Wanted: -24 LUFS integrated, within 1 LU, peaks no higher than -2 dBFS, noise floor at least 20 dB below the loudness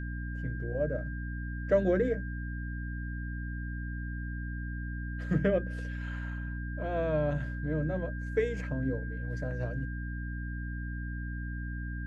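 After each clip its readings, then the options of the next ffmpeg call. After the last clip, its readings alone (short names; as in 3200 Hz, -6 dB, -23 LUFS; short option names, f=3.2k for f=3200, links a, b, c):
hum 60 Hz; harmonics up to 300 Hz; hum level -34 dBFS; steady tone 1600 Hz; tone level -44 dBFS; loudness -34.0 LUFS; peak -14.0 dBFS; loudness target -24.0 LUFS
-> -af "bandreject=f=60:t=h:w=4,bandreject=f=120:t=h:w=4,bandreject=f=180:t=h:w=4,bandreject=f=240:t=h:w=4,bandreject=f=300:t=h:w=4"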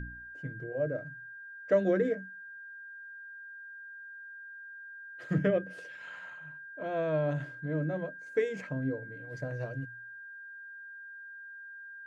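hum none; steady tone 1600 Hz; tone level -44 dBFS
-> -af "bandreject=f=1.6k:w=30"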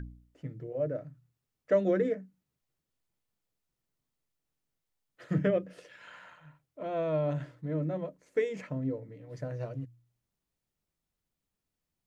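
steady tone none; loudness -33.0 LUFS; peak -15.0 dBFS; loudness target -24.0 LUFS
-> -af "volume=9dB"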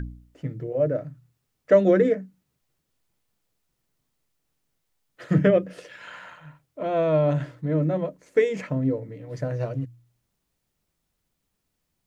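loudness -24.0 LUFS; peak -6.0 dBFS; noise floor -78 dBFS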